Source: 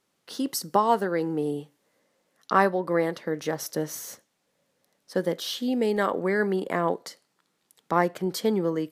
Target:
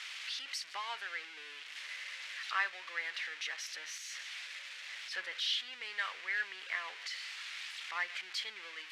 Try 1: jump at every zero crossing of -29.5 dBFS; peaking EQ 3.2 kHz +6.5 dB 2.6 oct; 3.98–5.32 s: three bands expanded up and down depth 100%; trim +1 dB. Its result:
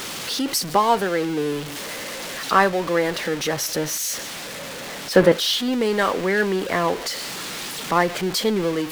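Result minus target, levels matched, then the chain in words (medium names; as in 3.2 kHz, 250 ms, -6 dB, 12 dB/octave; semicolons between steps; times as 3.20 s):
2 kHz band -6.5 dB
jump at every zero crossing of -29.5 dBFS; ladder band-pass 2.6 kHz, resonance 35%; peaking EQ 3.2 kHz +6.5 dB 2.6 oct; 3.98–5.32 s: three bands expanded up and down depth 100%; trim +1 dB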